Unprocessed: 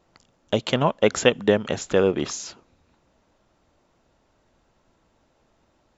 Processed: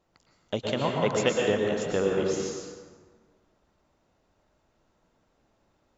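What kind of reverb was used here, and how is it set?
dense smooth reverb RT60 1.5 s, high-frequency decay 0.6×, pre-delay 100 ms, DRR −0.5 dB
level −8 dB

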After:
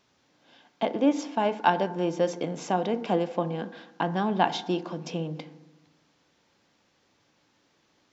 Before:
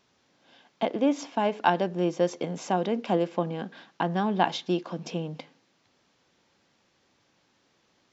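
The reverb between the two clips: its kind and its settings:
feedback delay network reverb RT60 1.1 s, low-frequency decay 1.2×, high-frequency decay 0.3×, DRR 12 dB

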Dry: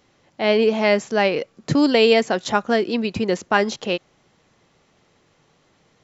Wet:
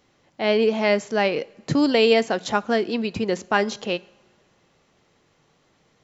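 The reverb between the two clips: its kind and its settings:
coupled-rooms reverb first 0.64 s, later 2.5 s, from −17 dB, DRR 19.5 dB
level −2.5 dB

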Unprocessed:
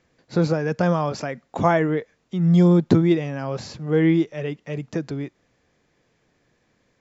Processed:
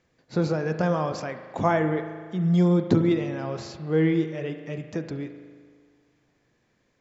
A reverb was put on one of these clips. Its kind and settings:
spring reverb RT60 1.8 s, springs 38 ms, chirp 35 ms, DRR 7.5 dB
level −4 dB

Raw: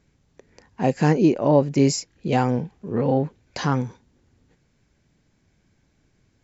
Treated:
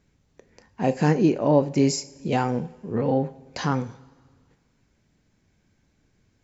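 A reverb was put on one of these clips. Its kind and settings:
coupled-rooms reverb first 0.34 s, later 1.8 s, from −17 dB, DRR 10.5 dB
level −2 dB

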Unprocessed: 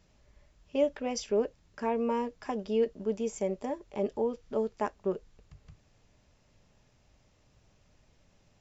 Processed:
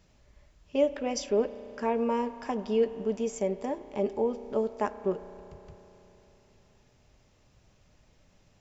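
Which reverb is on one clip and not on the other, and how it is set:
spring reverb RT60 3.5 s, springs 33 ms, chirp 25 ms, DRR 12.5 dB
level +2 dB

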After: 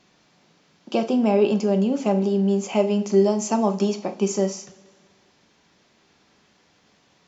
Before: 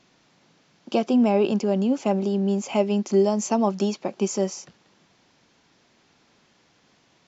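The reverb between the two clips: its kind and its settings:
coupled-rooms reverb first 0.39 s, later 1.7 s, from −19 dB, DRR 6 dB

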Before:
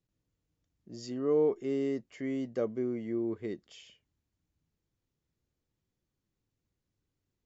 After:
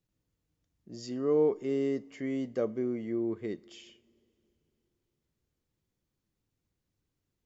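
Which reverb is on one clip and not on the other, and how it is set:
coupled-rooms reverb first 0.43 s, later 3.4 s, from −18 dB, DRR 17 dB
level +1 dB

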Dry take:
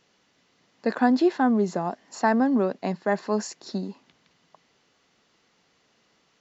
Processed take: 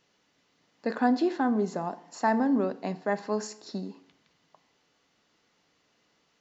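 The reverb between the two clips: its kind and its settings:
feedback delay network reverb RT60 0.69 s, low-frequency decay 1×, high-frequency decay 0.75×, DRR 11 dB
level −4.5 dB

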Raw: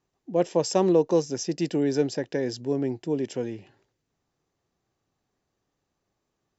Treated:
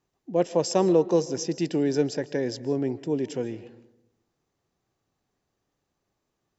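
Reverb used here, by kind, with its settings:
comb and all-pass reverb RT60 0.9 s, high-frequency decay 0.3×, pre-delay 105 ms, DRR 17 dB

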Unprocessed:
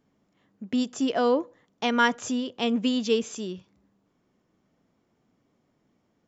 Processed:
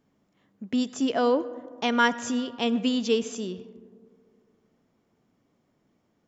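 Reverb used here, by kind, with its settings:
comb and all-pass reverb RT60 2.2 s, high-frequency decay 0.3×, pre-delay 45 ms, DRR 16.5 dB

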